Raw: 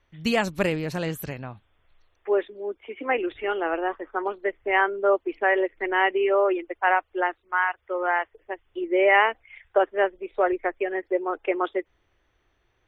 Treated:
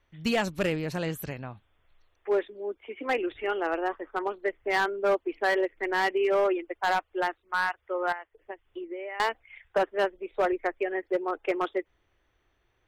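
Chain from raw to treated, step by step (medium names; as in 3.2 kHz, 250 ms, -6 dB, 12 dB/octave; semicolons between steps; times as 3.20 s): 8.12–9.20 s: compression 16:1, threshold -32 dBFS, peak gain reduction 19.5 dB; hard clipper -16.5 dBFS, distortion -14 dB; trim -2.5 dB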